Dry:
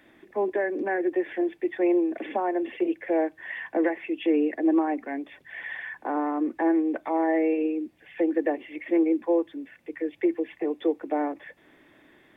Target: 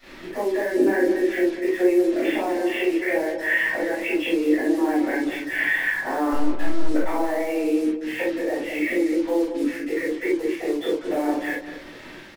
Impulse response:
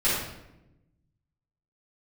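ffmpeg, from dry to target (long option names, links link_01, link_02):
-filter_complex "[0:a]asettb=1/sr,asplit=3[link_01][link_02][link_03];[link_01]atrim=end=2.524[link_04];[link_02]atrim=start=2.52:end=3.15,asetpts=PTS-STARTPTS,afade=type=in:duration=0.004:curve=qsin,afade=type=out:start_time=0.626:duration=0.004:curve=qsin,highpass=frequency=620:poles=1[link_05];[link_03]atrim=start=3.146[link_06];[link_04][link_05]acrossfade=duration=0.004:curve1=hsin:curve2=qsin[link_07];[link_07][link_06]acrossfade=duration=0.004:curve1=qsin:curve2=hsin,acompressor=threshold=-32dB:ratio=20,alimiter=level_in=5dB:limit=-24dB:level=0:latency=1:release=271,volume=-5dB,acontrast=66,asettb=1/sr,asplit=3[link_08][link_09][link_10];[link_08]atrim=end=6.324[link_11];[link_09]atrim=start=6.32:end=6.87,asetpts=PTS-STARTPTS,afade=type=in:duration=0.004:curve=qsin,afade=type=out:start_time=0.546:duration=0.004:curve=qsin,aeval=exprs='(tanh(50.1*val(0)+0.7)-tanh(0.7))/50.1':channel_layout=same[link_12];[link_10]atrim=start=6.866[link_13];[link_11][link_12]acrossfade=duration=0.004:curve1=hsin:curve2=qsin[link_14];[link_14][link_13]acrossfade=duration=0.004:curve1=qsin:curve2=hsin,flanger=delay=20:depth=3.7:speed=2.9,acrusher=bits=7:mix=0:aa=0.5,asplit=2[link_15][link_16];[link_16]adelay=196,lowpass=frequency=860:poles=1,volume=-6.5dB,asplit=2[link_17][link_18];[link_18]adelay=196,lowpass=frequency=860:poles=1,volume=0.43,asplit=2[link_19][link_20];[link_20]adelay=196,lowpass=frequency=860:poles=1,volume=0.43,asplit=2[link_21][link_22];[link_22]adelay=196,lowpass=frequency=860:poles=1,volume=0.43,asplit=2[link_23][link_24];[link_24]adelay=196,lowpass=frequency=860:poles=1,volume=0.43[link_25];[link_15][link_17][link_19][link_21][link_23][link_25]amix=inputs=6:normalize=0[link_26];[1:a]atrim=start_sample=2205,afade=type=out:start_time=0.13:duration=0.01,atrim=end_sample=6174[link_27];[link_26][link_27]afir=irnorm=-1:irlink=0"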